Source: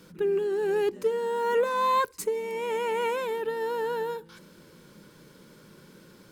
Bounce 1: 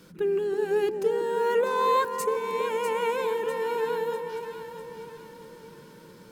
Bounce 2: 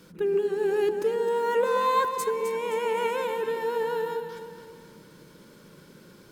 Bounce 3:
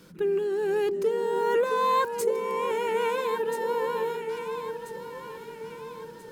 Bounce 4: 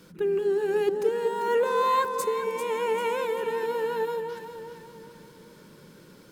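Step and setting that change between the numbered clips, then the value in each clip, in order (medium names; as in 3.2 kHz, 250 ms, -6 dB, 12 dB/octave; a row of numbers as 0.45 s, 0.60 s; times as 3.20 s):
echo whose repeats swap between lows and highs, time: 324 ms, 130 ms, 667 ms, 197 ms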